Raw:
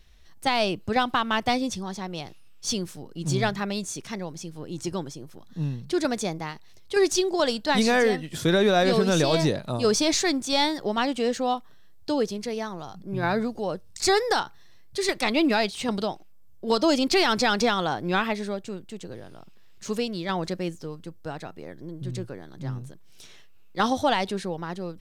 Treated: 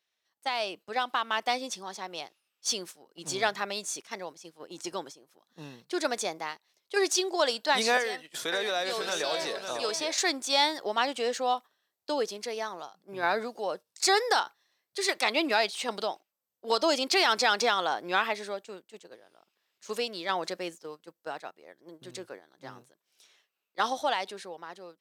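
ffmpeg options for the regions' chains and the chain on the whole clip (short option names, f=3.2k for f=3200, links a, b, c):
-filter_complex "[0:a]asettb=1/sr,asplit=3[a][b][c];[a]atrim=end=7.974[d];[b]atrim=start=7.97:end=10.18,asetpts=PTS-STARTPTS,afade=t=in:d=0.004:c=qsin,afade=t=out:st=2.206:d=0.004:c=qsin,acrossover=split=500|2300[e][f][g];[e]acompressor=threshold=-33dB:ratio=4[h];[f]acompressor=threshold=-30dB:ratio=4[i];[g]acompressor=threshold=-33dB:ratio=4[j];[h][i][j]amix=inputs=3:normalize=0,aecho=1:1:551:0.422,atrim=end_sample=97461[k];[c]atrim=start=10.176[l];[d][k]acrossfade=d=0.004:c1=hsin:c2=qsin[m];[m][l]acrossfade=d=0.004:c1=qsin:c2=hsin,agate=range=-10dB:threshold=-36dB:ratio=16:detection=peak,highpass=510,dynaudnorm=f=220:g=13:m=7dB,volume=-6.5dB"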